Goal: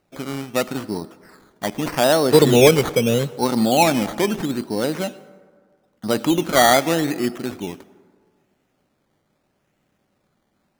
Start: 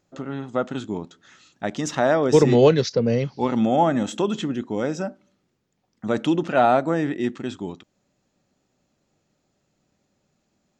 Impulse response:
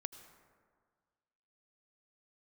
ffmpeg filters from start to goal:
-filter_complex "[0:a]asettb=1/sr,asplit=3[a][b][c];[a]atrim=end=1.024[d];[b]atrim=start=1.02:end=1.82,asetpts=PTS-STARTPTS,afade=t=in:d=0.004:c=qsin,afade=t=out:st=0.796:d=0.004:c=qsin,lowpass=f=3.4k:w=0.5412,lowpass=f=3.4k:w=1.3066[e];[c]atrim=start=1.816[f];[d][e]acrossfade=d=0.004:c1=hsin:c2=qsin[g];[g][f]acrossfade=d=0.004:c1=qsin:c2=hsin,acrusher=samples=13:mix=1:aa=0.000001:lfo=1:lforange=7.8:lforate=0.79,asplit=2[h][i];[1:a]atrim=start_sample=2205,lowshelf=f=220:g=-9[j];[i][j]afir=irnorm=-1:irlink=0,volume=-0.5dB[k];[h][k]amix=inputs=2:normalize=0,volume=-1dB"

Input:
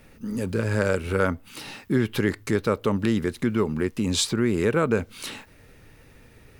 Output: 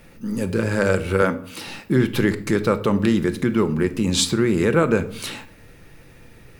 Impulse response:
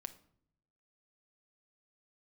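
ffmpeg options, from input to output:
-filter_complex "[0:a]asettb=1/sr,asplit=3[a][b][c];[a]atrim=end=1.224[d];[b]atrim=start=1.22:end=1.67,asetpts=PTS-STARTPTS,afade=t=in:d=0.004:c=qsin,afade=t=out:st=0.446:d=0.004:c=qsin,highpass=f=170:w=0.5412,highpass=f=170:w=1.3066[e];[c]atrim=start=1.666[f];[d][e]acrossfade=d=0.004:c1=hsin:c2=qsin[g];[g][f]acrossfade=d=0.004:c1=qsin:c2=hsin[h];[1:a]atrim=start_sample=2205[i];[h][i]afir=irnorm=-1:irlink=0,volume=8dB"

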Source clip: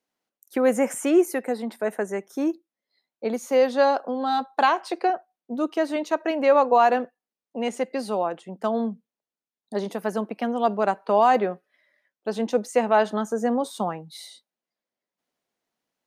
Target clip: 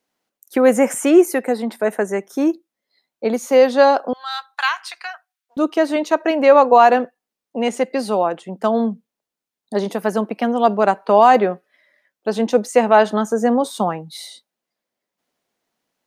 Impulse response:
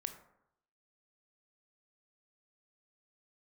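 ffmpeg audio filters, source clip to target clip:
-filter_complex "[0:a]asettb=1/sr,asplit=3[a][b][c];[a]atrim=end=4.134[d];[b]atrim=start=4.13:end=5.57,asetpts=PTS-STARTPTS,afade=t=in:d=0.004:c=qsin,afade=t=out:st=1.436:d=0.004:c=qsin,highpass=f=1.3k:w=0.5412,highpass=f=1.3k:w=1.3066[e];[c]atrim=start=5.566[f];[d][e]acrossfade=d=0.004:c1=hsin:c2=qsin[g];[g][f]acrossfade=d=0.004:c1=qsin:c2=hsin,volume=7dB"

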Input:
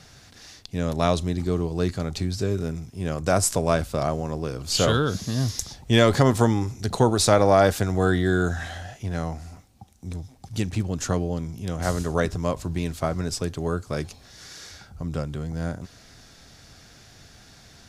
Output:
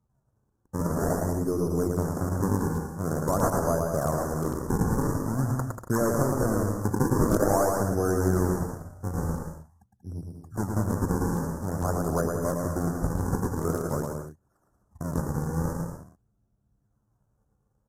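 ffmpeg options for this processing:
-af "bandreject=f=60:t=h:w=6,bandreject=f=120:t=h:w=6,bandreject=f=180:t=h:w=6,bandreject=f=240:t=h:w=6,anlmdn=39.8,highpass=92,highshelf=f=5.1k:g=8,acompressor=threshold=-24dB:ratio=2.5,acrusher=samples=39:mix=1:aa=0.000001:lfo=1:lforange=62.4:lforate=0.47,aeval=exprs='0.299*(cos(1*acos(clip(val(0)/0.299,-1,1)))-cos(1*PI/2))+0.0211*(cos(4*acos(clip(val(0)/0.299,-1,1)))-cos(4*PI/2))+0.00237*(cos(5*acos(clip(val(0)/0.299,-1,1)))-cos(5*PI/2))':c=same,asuperstop=centerf=3000:order=8:qfactor=0.68,aecho=1:1:110|187|240.9|278.6|305:0.631|0.398|0.251|0.158|0.1" -ar 32000 -c:a aac -b:a 48k

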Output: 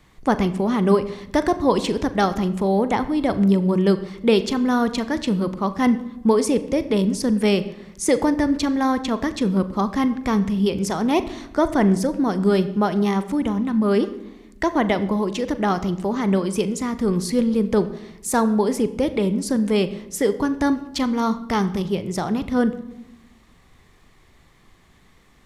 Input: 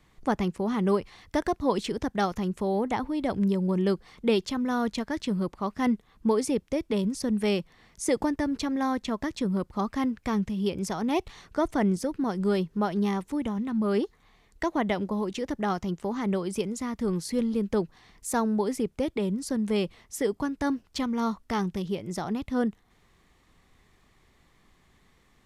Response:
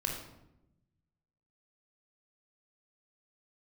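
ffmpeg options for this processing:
-filter_complex "[0:a]asplit=2[a][b];[1:a]atrim=start_sample=2205,highshelf=f=8.8k:g=-8.5,adelay=40[c];[b][c]afir=irnorm=-1:irlink=0,volume=-15dB[d];[a][d]amix=inputs=2:normalize=0,volume=7dB"

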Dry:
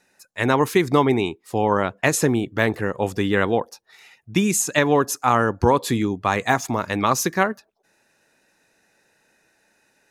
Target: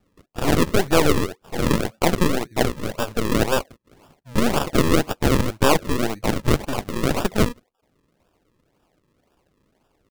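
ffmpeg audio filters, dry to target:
-af "asetrate=49501,aresample=44100,atempo=0.890899,acrusher=samples=41:mix=1:aa=0.000001:lfo=1:lforange=41:lforate=1.9,aeval=exprs='0.668*(cos(1*acos(clip(val(0)/0.668,-1,1)))-cos(1*PI/2))+0.15*(cos(8*acos(clip(val(0)/0.668,-1,1)))-cos(8*PI/2))':c=same,volume=-2dB"

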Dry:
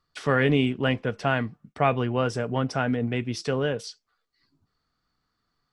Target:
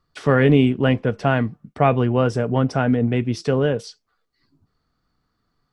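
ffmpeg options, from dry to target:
-af "tiltshelf=f=970:g=4,volume=4dB"

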